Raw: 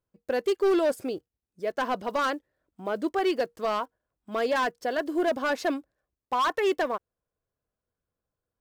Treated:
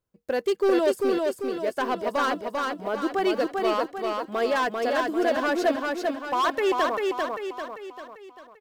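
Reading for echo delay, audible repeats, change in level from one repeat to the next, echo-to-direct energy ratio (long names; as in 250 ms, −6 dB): 394 ms, 6, −6.5 dB, −2.0 dB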